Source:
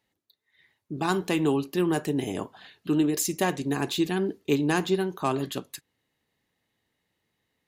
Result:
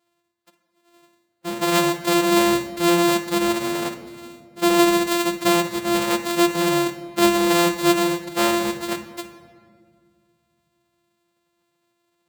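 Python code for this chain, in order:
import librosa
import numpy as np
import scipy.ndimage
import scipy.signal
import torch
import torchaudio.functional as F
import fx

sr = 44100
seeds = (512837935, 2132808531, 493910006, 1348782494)

y = np.r_[np.sort(x[:len(x) // 128 * 128].reshape(-1, 128), axis=1).ravel(), x[len(x) // 128 * 128:]]
y = fx.highpass(y, sr, hz=340.0, slope=6)
y = fx.stretch_vocoder(y, sr, factor=1.6)
y = fx.room_shoebox(y, sr, seeds[0], volume_m3=3200.0, walls='mixed', distance_m=0.94)
y = y * librosa.db_to_amplitude(6.5)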